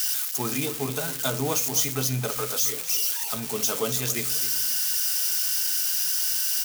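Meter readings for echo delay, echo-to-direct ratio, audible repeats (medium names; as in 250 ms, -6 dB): 266 ms, -13.0 dB, 2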